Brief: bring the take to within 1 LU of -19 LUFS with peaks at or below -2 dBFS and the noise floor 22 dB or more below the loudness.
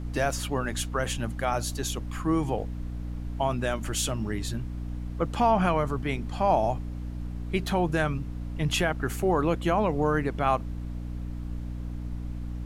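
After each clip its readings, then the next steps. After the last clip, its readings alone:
hum 60 Hz; harmonics up to 300 Hz; hum level -32 dBFS; noise floor -35 dBFS; noise floor target -51 dBFS; loudness -29.0 LUFS; peak -11.0 dBFS; loudness target -19.0 LUFS
-> notches 60/120/180/240/300 Hz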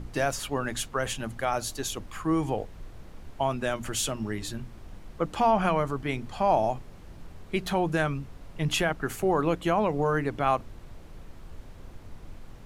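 hum none; noise floor -47 dBFS; noise floor target -51 dBFS
-> noise print and reduce 6 dB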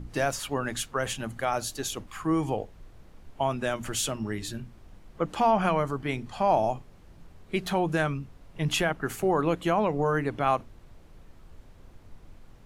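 noise floor -53 dBFS; loudness -28.5 LUFS; peak -12.0 dBFS; loudness target -19.0 LUFS
-> gain +9.5 dB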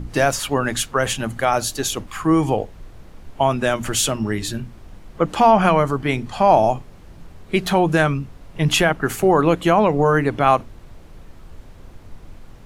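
loudness -19.0 LUFS; peak -2.5 dBFS; noise floor -43 dBFS

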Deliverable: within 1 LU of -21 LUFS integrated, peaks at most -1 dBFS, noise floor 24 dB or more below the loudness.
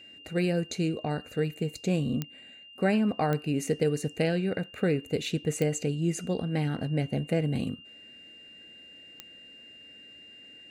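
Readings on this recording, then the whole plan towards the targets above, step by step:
clicks 4; steady tone 2800 Hz; tone level -48 dBFS; loudness -29.5 LUFS; peak -13.0 dBFS; loudness target -21.0 LUFS
-> de-click; notch 2800 Hz, Q 30; gain +8.5 dB

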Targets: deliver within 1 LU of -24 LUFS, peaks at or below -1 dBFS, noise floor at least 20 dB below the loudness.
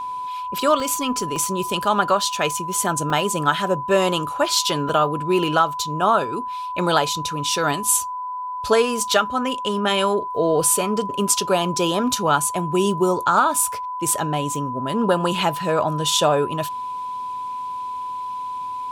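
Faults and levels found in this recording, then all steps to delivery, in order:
dropouts 4; longest dropout 2.5 ms; steady tone 1000 Hz; tone level -26 dBFS; loudness -21.0 LUFS; peak -3.5 dBFS; loudness target -24.0 LUFS
-> interpolate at 0.8/1.36/3.1/4.89, 2.5 ms; notch 1000 Hz, Q 30; gain -3 dB

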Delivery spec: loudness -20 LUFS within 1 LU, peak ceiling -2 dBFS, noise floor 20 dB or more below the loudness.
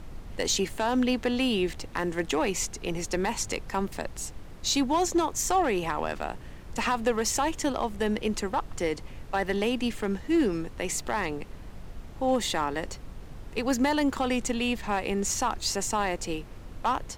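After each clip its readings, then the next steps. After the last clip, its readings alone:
clipped 0.4%; flat tops at -17.5 dBFS; noise floor -44 dBFS; noise floor target -49 dBFS; loudness -28.5 LUFS; peak -17.5 dBFS; loudness target -20.0 LUFS
-> clip repair -17.5 dBFS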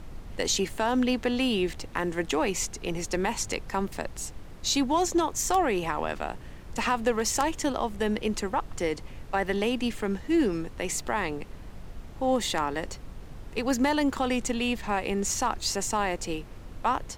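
clipped 0.0%; noise floor -44 dBFS; noise floor target -49 dBFS
-> noise print and reduce 6 dB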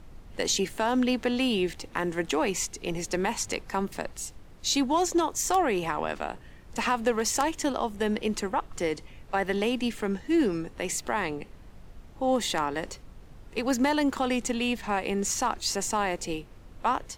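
noise floor -49 dBFS; loudness -28.5 LUFS; peak -8.5 dBFS; loudness target -20.0 LUFS
-> gain +8.5 dB; limiter -2 dBFS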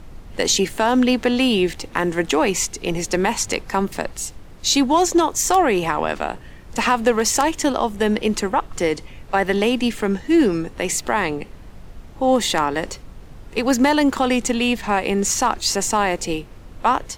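loudness -20.0 LUFS; peak -2.0 dBFS; noise floor -41 dBFS

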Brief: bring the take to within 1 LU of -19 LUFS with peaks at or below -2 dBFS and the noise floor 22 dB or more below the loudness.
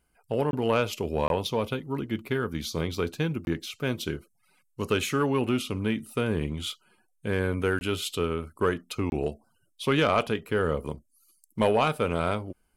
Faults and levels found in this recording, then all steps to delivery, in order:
dropouts 5; longest dropout 21 ms; loudness -28.5 LUFS; peak -12.0 dBFS; loudness target -19.0 LUFS
-> interpolate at 0.51/1.28/3.45/7.79/9.1, 21 ms; gain +9.5 dB

